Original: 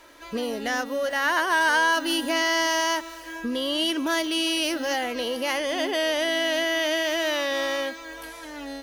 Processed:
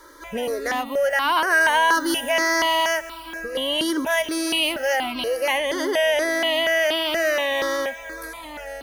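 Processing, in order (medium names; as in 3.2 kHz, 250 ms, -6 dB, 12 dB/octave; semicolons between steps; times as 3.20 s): band-stop 7.6 kHz, Q 15; stepped phaser 4.2 Hz 710–1800 Hz; trim +6.5 dB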